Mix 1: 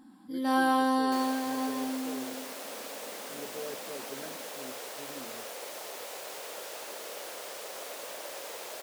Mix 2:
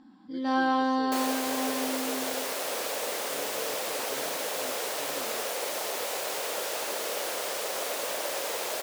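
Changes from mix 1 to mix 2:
first sound: add low-pass 5.9 kHz 24 dB/octave; second sound +9.0 dB

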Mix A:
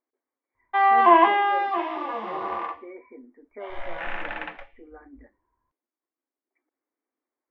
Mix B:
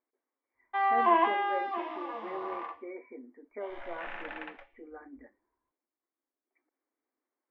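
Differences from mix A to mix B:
background -8.5 dB; master: add bass shelf 130 Hz -6.5 dB

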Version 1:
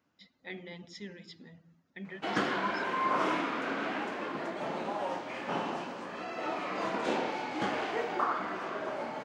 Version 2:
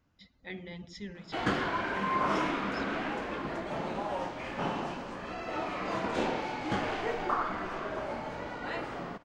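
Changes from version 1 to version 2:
background: entry -0.90 s; master: remove high-pass 200 Hz 12 dB/octave

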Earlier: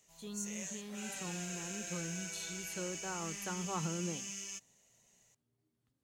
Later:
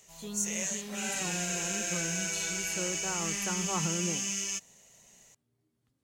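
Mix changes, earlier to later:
speech +4.5 dB; background +10.5 dB

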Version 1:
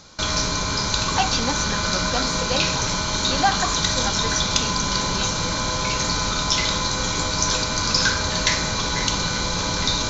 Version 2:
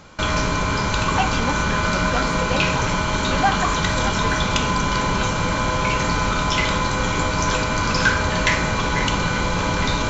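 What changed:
background +4.5 dB; master: add high-order bell 5 kHz -12 dB 1.1 oct

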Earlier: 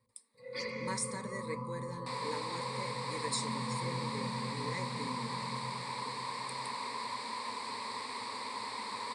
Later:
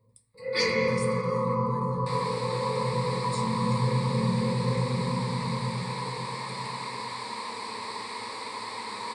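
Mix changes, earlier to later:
speech -7.5 dB; first sound +8.0 dB; reverb: on, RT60 0.40 s

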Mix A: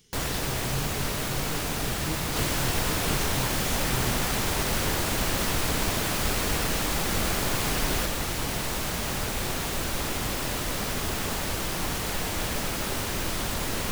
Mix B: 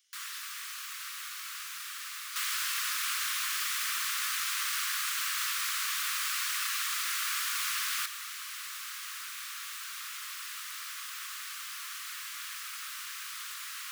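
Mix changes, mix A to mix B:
speech -8.5 dB; first sound -8.0 dB; master: add steep high-pass 1.1 kHz 96 dB/octave

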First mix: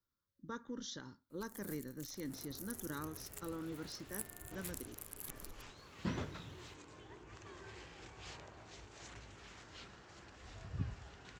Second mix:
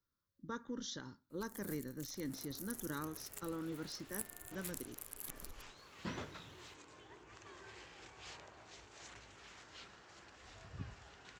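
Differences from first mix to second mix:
second sound: add bass shelf 310 Hz -8.5 dB; reverb: on

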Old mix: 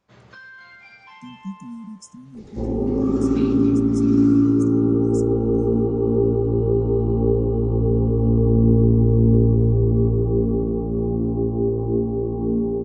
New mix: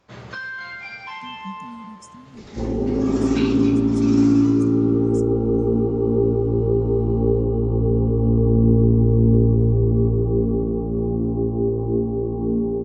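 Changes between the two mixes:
speech -3.5 dB; first sound +11.0 dB

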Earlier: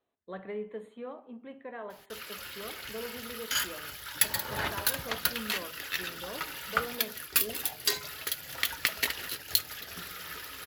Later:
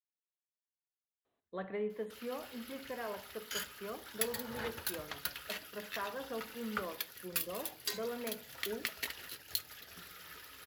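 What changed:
speech: entry +1.25 s; background -10.0 dB

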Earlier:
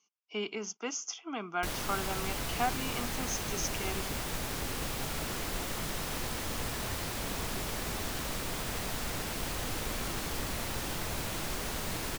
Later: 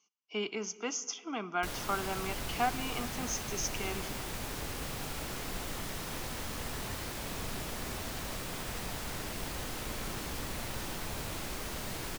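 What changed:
background -6.0 dB; reverb: on, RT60 2.8 s

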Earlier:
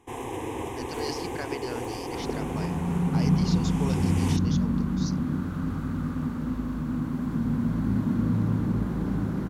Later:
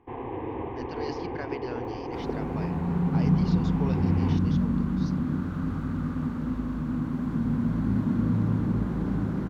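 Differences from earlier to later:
speech: add distance through air 150 m; first sound: add Gaussian low-pass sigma 3.6 samples; master: add treble shelf 6.3 kHz -10.5 dB

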